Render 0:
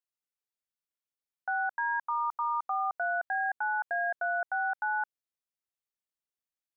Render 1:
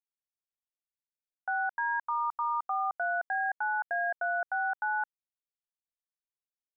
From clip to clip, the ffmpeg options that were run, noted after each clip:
-af "anlmdn=0.631"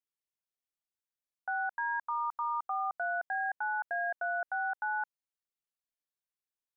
-af "acontrast=46,volume=-8.5dB"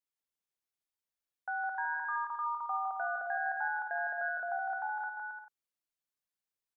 -af "aecho=1:1:160|272|350.4|405.3|443.7:0.631|0.398|0.251|0.158|0.1,volume=-2.5dB"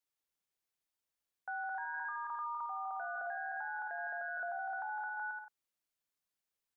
-af "alimiter=level_in=11dB:limit=-24dB:level=0:latency=1:release=24,volume=-11dB,volume=1.5dB"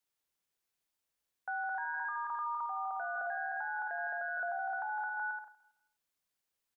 -af "aecho=1:1:162|324|486:0.0944|0.0321|0.0109,volume=3dB"

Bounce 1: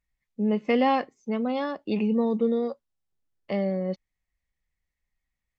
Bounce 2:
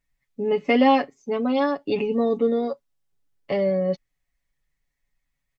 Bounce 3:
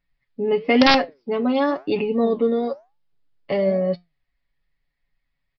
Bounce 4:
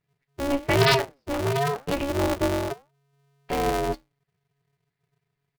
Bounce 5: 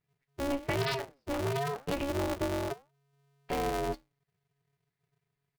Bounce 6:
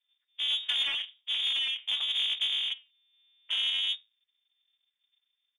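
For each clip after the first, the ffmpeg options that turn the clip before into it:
-af "aecho=1:1:7.1:0.78,volume=3dB"
-af "aresample=11025,aeval=exprs='(mod(2.37*val(0)+1,2)-1)/2.37':c=same,aresample=44100,flanger=delay=5.6:depth=6.7:regen=84:speed=1:shape=sinusoidal,volume=6.5dB"
-af "aeval=exprs='val(0)*sgn(sin(2*PI*140*n/s))':c=same,volume=-4.5dB"
-af "acompressor=threshold=-23dB:ratio=10,volume=-4.5dB"
-af "lowpass=f=3.1k:t=q:w=0.5098,lowpass=f=3.1k:t=q:w=0.6013,lowpass=f=3.1k:t=q:w=0.9,lowpass=f=3.1k:t=q:w=2.563,afreqshift=-3700,aexciter=amount=2.1:drive=8.3:freq=2.1k,volume=-6.5dB"

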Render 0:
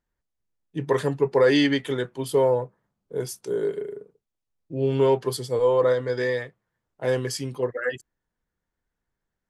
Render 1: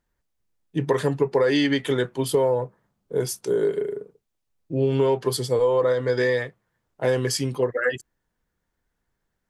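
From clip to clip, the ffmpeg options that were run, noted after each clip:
-af "acompressor=threshold=-23dB:ratio=5,volume=5.5dB"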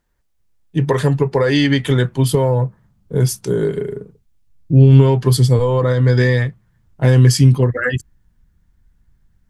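-af "asubboost=boost=9:cutoff=160,volume=6dB"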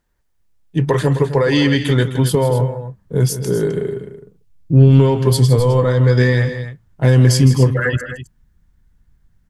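-af "aeval=exprs='0.891*(cos(1*acos(clip(val(0)/0.891,-1,1)))-cos(1*PI/2))+0.0316*(cos(4*acos(clip(val(0)/0.891,-1,1)))-cos(4*PI/2))+0.02*(cos(6*acos(clip(val(0)/0.891,-1,1)))-cos(6*PI/2))':c=same,aecho=1:1:160.3|259.5:0.251|0.251"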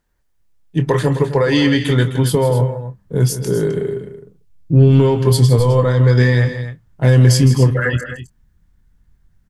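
-filter_complex "[0:a]asplit=2[a][b];[b]adelay=25,volume=-11dB[c];[a][c]amix=inputs=2:normalize=0"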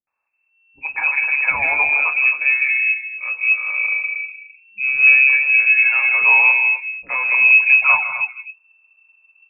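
-filter_complex "[0:a]equalizer=f=750:w=2.4:g=-7,lowpass=f=2.3k:t=q:w=0.5098,lowpass=f=2.3k:t=q:w=0.6013,lowpass=f=2.3k:t=q:w=0.9,lowpass=f=2.3k:t=q:w=2.563,afreqshift=-2700,acrossover=split=350|2000[a][b][c];[b]adelay=70[d];[c]adelay=270[e];[a][d][e]amix=inputs=3:normalize=0"

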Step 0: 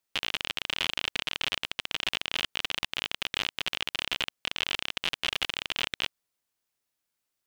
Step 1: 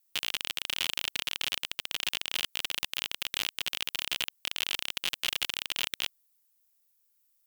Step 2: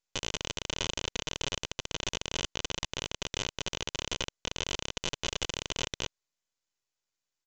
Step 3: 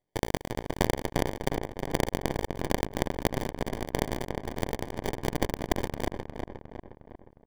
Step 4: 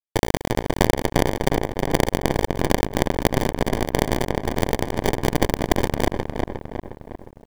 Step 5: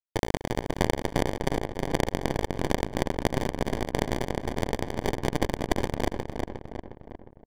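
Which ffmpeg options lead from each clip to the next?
-af "aemphasis=mode=production:type=75fm,volume=-5.5dB"
-af "aecho=1:1:2:0.36,aresample=16000,aeval=exprs='max(val(0),0)':c=same,aresample=44100"
-filter_complex "[0:a]acrusher=samples=33:mix=1:aa=0.000001,asplit=2[a][b];[b]adelay=358,lowpass=f=2.3k:p=1,volume=-5dB,asplit=2[c][d];[d]adelay=358,lowpass=f=2.3k:p=1,volume=0.54,asplit=2[e][f];[f]adelay=358,lowpass=f=2.3k:p=1,volume=0.54,asplit=2[g][h];[h]adelay=358,lowpass=f=2.3k:p=1,volume=0.54,asplit=2[i][j];[j]adelay=358,lowpass=f=2.3k:p=1,volume=0.54,asplit=2[k][l];[l]adelay=358,lowpass=f=2.3k:p=1,volume=0.54,asplit=2[m][n];[n]adelay=358,lowpass=f=2.3k:p=1,volume=0.54[o];[a][c][e][g][i][k][m][o]amix=inputs=8:normalize=0,volume=4dB"
-filter_complex "[0:a]asplit=2[a][b];[b]alimiter=limit=-18.5dB:level=0:latency=1:release=128,volume=2dB[c];[a][c]amix=inputs=2:normalize=0,acrusher=bits=10:mix=0:aa=0.000001,volume=4.5dB"
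-af "adynamicsmooth=sensitivity=3.5:basefreq=830,aecho=1:1:283:0.0891,volume=-6.5dB"

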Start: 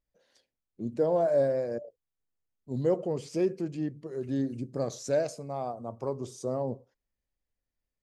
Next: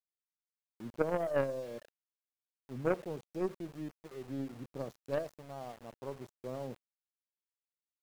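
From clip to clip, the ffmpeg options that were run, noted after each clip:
-af "highshelf=f=2.5k:g=-11,aeval=exprs='0.158*(cos(1*acos(clip(val(0)/0.158,-1,1)))-cos(1*PI/2))+0.01*(cos(2*acos(clip(val(0)/0.158,-1,1)))-cos(2*PI/2))+0.0562*(cos(3*acos(clip(val(0)/0.158,-1,1)))-cos(3*PI/2))+0.0126*(cos(5*acos(clip(val(0)/0.158,-1,1)))-cos(5*PI/2))':c=same,aeval=exprs='val(0)*gte(abs(val(0)),0.00355)':c=same"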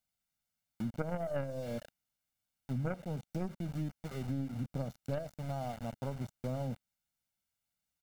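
-af "lowshelf=f=310:t=q:w=1.5:g=6.5,aecho=1:1:1.4:0.56,acompressor=threshold=-40dB:ratio=5,volume=6.5dB"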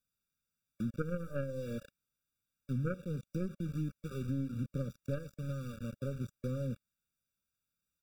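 -af "afftfilt=real='re*eq(mod(floor(b*sr/1024/560),2),0)':imag='im*eq(mod(floor(b*sr/1024/560),2),0)':win_size=1024:overlap=0.75,volume=1dB"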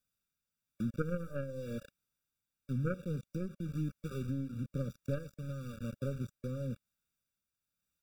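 -af "tremolo=f=1:d=0.36,volume=1.5dB"

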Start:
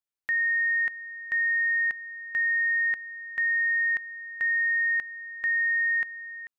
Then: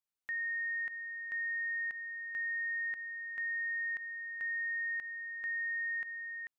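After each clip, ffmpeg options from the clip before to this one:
-af "alimiter=level_in=6dB:limit=-24dB:level=0:latency=1,volume=-6dB,volume=-3dB"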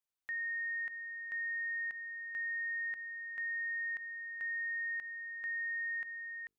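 -af "bandreject=f=50:t=h:w=6,bandreject=f=100:t=h:w=6,bandreject=f=150:t=h:w=6,bandreject=f=200:t=h:w=6,bandreject=f=250:t=h:w=6,bandreject=f=300:t=h:w=6,bandreject=f=350:t=h:w=6,bandreject=f=400:t=h:w=6,bandreject=f=450:t=h:w=6,volume=-1.5dB"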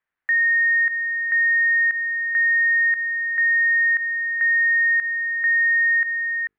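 -af "lowpass=f=1.8k:t=q:w=3.5,volume=9dB"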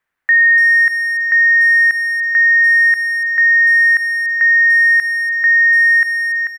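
-filter_complex "[0:a]asplit=2[a][b];[b]adelay=290,highpass=300,lowpass=3.4k,asoftclip=type=hard:threshold=-25dB,volume=-11dB[c];[a][c]amix=inputs=2:normalize=0,volume=8.5dB"

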